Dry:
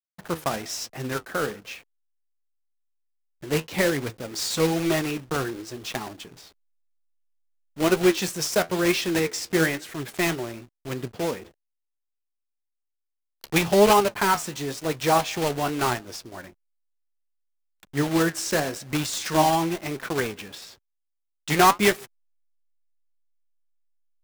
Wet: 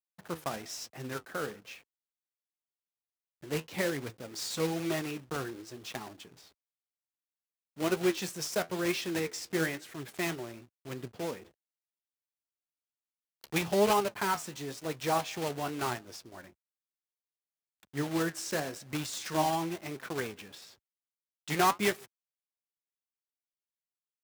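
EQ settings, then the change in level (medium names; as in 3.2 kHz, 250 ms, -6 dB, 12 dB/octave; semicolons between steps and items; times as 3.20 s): high-pass 63 Hz; -9.0 dB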